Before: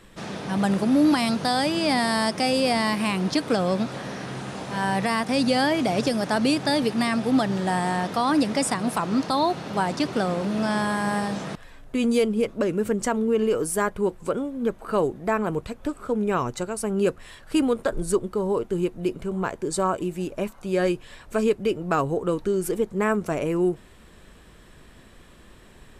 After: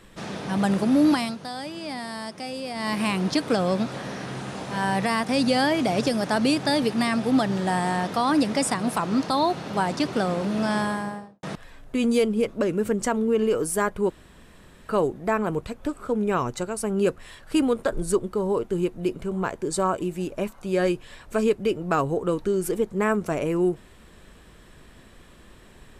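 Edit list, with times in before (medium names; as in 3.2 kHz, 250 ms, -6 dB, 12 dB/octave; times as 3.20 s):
1.11–2.99 s: dip -11 dB, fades 0.25 s
10.75–11.43 s: studio fade out
14.10–14.89 s: room tone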